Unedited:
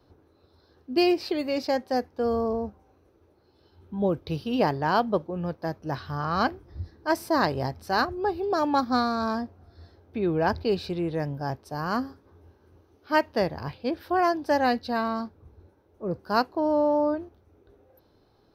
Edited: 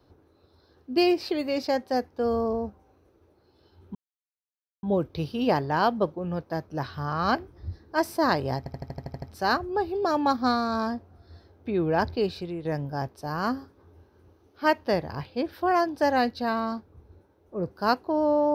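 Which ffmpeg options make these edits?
-filter_complex "[0:a]asplit=11[s0][s1][s2][s3][s4][s5][s6][s7][s8][s9][s10];[s0]atrim=end=3.95,asetpts=PTS-STARTPTS,afade=t=out:st=3.946:d=0.004:c=hsin,apad=pad_dur=0.88[s11];[s1]atrim=start=3.95:end=7.782,asetpts=PTS-STARTPTS,afade=t=in:d=0.004:c=hsin[s12];[s2]atrim=start=7.698:end=7.782[s13];[s3]atrim=start=7.698:end=7.782[s14];[s4]atrim=start=7.698:end=7.782[s15];[s5]atrim=start=7.698:end=7.782[s16];[s6]atrim=start=7.698:end=7.782[s17];[s7]atrim=start=7.698:end=7.782[s18];[s8]atrim=start=7.698:end=7.782[s19];[s9]atrim=start=7.698:end=11.13,asetpts=PTS-STARTPTS,afade=t=out:st=2.932:d=0.5:silence=0.398107[s20];[s10]atrim=start=11.13,asetpts=PTS-STARTPTS,afade=t=in:d=0.004:c=hsin:silence=0.398107[s21];[s11][s12]concat=n=2:v=0:a=1[s22];[s22][s13]acrossfade=d=0.004:c1=hsin:c2=hsin[s23];[s23][s14]acrossfade=d=0.004:c1=hsin:c2=hsin[s24];[s24][s15]acrossfade=d=0.004:c1=hsin:c2=hsin[s25];[s25][s16]acrossfade=d=0.004:c1=hsin:c2=hsin[s26];[s26][s17]acrossfade=d=0.004:c1=hsin:c2=hsin[s27];[s27][s18]acrossfade=d=0.004:c1=hsin:c2=hsin[s28];[s28][s19]acrossfade=d=0.004:c1=hsin:c2=hsin[s29];[s20][s21]concat=n=2:v=0:a=1[s30];[s29][s30]acrossfade=d=0.004:c1=hsin:c2=hsin"

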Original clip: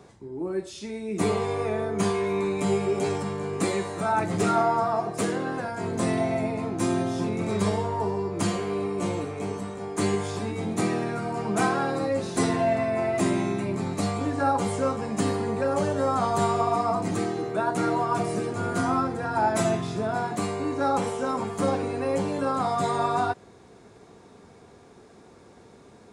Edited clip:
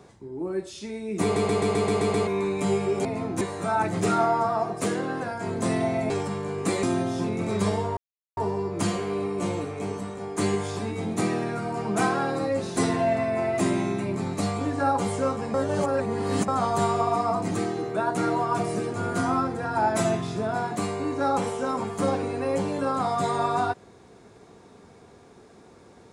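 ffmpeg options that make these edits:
-filter_complex "[0:a]asplit=16[s0][s1][s2][s3][s4][s5][s6][s7][s8][s9][s10][s11][s12][s13][s14][s15];[s0]atrim=end=1.362[s16];[s1]atrim=start=1.228:end=1.362[s17];[s2]atrim=start=1.228:end=1.362[s18];[s3]atrim=start=1.228:end=1.362[s19];[s4]atrim=start=1.228:end=1.362[s20];[s5]atrim=start=1.228:end=1.362[s21];[s6]atrim=start=1.228:end=1.362[s22];[s7]atrim=start=1.228:end=1.362[s23];[s8]atrim=start=2.268:end=3.052[s24];[s9]atrim=start=6.468:end=6.832[s25];[s10]atrim=start=3.778:end=6.472[s26];[s11]atrim=start=3.048:end=3.782[s27];[s12]atrim=start=6.828:end=7.97,asetpts=PTS-STARTPTS,afade=t=out:st=1.138:d=0.004:c=hsin,apad=pad_dur=0.4[s28];[s13]atrim=start=7.97:end=15.142,asetpts=PTS-STARTPTS,afade=t=in:d=0.004:c=hsin[s29];[s14]atrim=start=15.138:end=16.082,asetpts=PTS-STARTPTS,areverse[s30];[s15]atrim=start=16.078[s31];[s16][s17]acrossfade=d=0.004:c1=hsin:c2=hsin[s32];[s32][s18]acrossfade=d=0.004:c1=hsin:c2=hsin[s33];[s33][s19]acrossfade=d=0.004:c1=hsin:c2=hsin[s34];[s34][s20]acrossfade=d=0.004:c1=hsin:c2=hsin[s35];[s35][s21]acrossfade=d=0.004:c1=hsin:c2=hsin[s36];[s36][s22]acrossfade=d=0.004:c1=hsin:c2=hsin[s37];[s37][s23]acrossfade=d=0.004:c1=hsin:c2=hsin[s38];[s38][s24]acrossfade=d=0.004:c1=hsin:c2=hsin[s39];[s39][s25]acrossfade=d=0.004:c1=hsin:c2=hsin[s40];[s40][s26]acrossfade=d=0.004:c1=hsin:c2=hsin[s41];[s41][s27]acrossfade=d=0.004:c1=hsin:c2=hsin[s42];[s28][s29]concat=n=2:v=0:a=1[s43];[s42][s43]acrossfade=d=0.004:c1=hsin:c2=hsin[s44];[s44][s30]acrossfade=d=0.004:c1=hsin:c2=hsin[s45];[s45][s31]acrossfade=d=0.004:c1=hsin:c2=hsin"

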